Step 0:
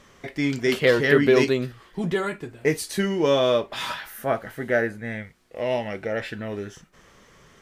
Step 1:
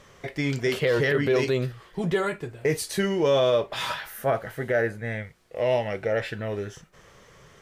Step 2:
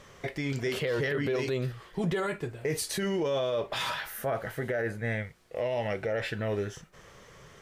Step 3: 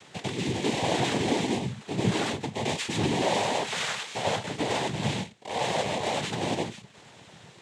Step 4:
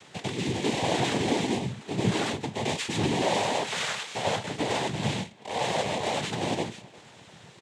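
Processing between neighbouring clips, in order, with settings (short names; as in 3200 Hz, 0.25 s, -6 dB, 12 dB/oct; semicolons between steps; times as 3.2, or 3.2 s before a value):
limiter -15 dBFS, peak gain reduction 10.5 dB; graphic EQ 125/250/500 Hz +5/-6/+4 dB
limiter -22 dBFS, peak gain reduction 9.5 dB
sample sorter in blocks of 16 samples; reverse echo 97 ms -4 dB; noise vocoder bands 6; gain +2 dB
speakerphone echo 0.35 s, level -22 dB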